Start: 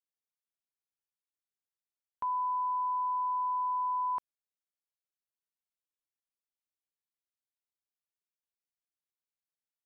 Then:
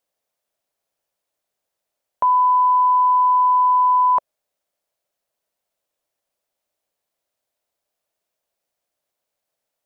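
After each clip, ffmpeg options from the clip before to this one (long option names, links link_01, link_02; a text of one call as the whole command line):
ffmpeg -i in.wav -af "equalizer=frequency=610:width_type=o:width=0.82:gain=14,acontrast=81,volume=5.5dB" out.wav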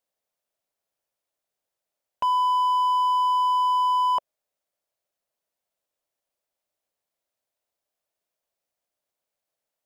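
ffmpeg -i in.wav -af "asoftclip=type=hard:threshold=-14.5dB,volume=-5dB" out.wav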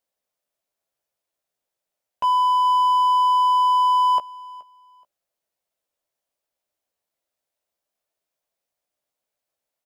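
ffmpeg -i in.wav -filter_complex "[0:a]asplit=2[link_01][link_02];[link_02]adelay=15,volume=-6.5dB[link_03];[link_01][link_03]amix=inputs=2:normalize=0,aecho=1:1:425|850:0.0794|0.0199" out.wav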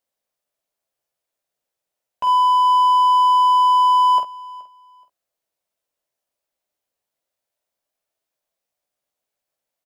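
ffmpeg -i in.wav -filter_complex "[0:a]asplit=2[link_01][link_02];[link_02]adelay=47,volume=-6.5dB[link_03];[link_01][link_03]amix=inputs=2:normalize=0" out.wav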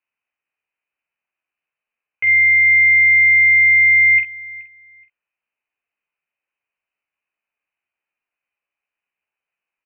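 ffmpeg -i in.wav -af "lowpass=frequency=2600:width_type=q:width=0.5098,lowpass=frequency=2600:width_type=q:width=0.6013,lowpass=frequency=2600:width_type=q:width=0.9,lowpass=frequency=2600:width_type=q:width=2.563,afreqshift=-3100,volume=2.5dB" out.wav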